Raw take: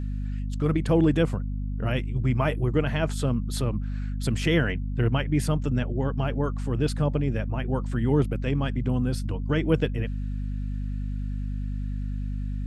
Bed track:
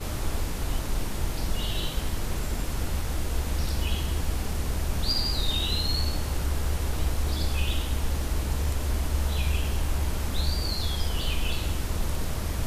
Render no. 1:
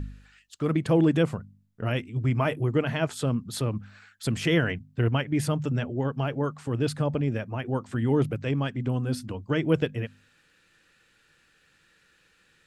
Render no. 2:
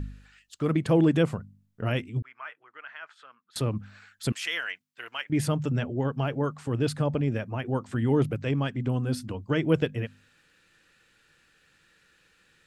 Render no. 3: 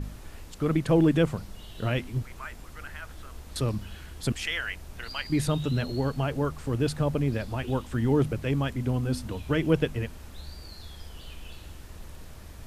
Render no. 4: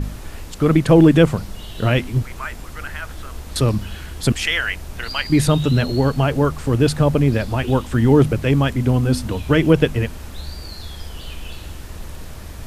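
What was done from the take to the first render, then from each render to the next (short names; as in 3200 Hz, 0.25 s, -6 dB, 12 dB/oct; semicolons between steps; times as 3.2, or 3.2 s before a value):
de-hum 50 Hz, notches 5
2.22–3.56 ladder band-pass 1700 Hz, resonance 45%; 4.32–5.3 HPF 1400 Hz
add bed track -15.5 dB
gain +10.5 dB; limiter -2 dBFS, peak gain reduction 2 dB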